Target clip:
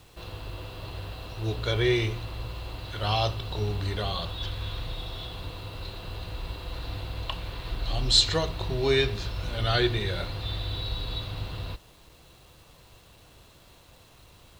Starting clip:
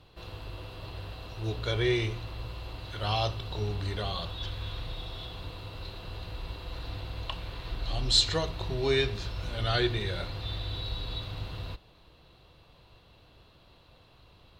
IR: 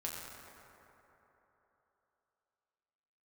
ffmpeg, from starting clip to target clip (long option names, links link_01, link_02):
-af "acrusher=bits=9:mix=0:aa=0.000001,volume=3dB"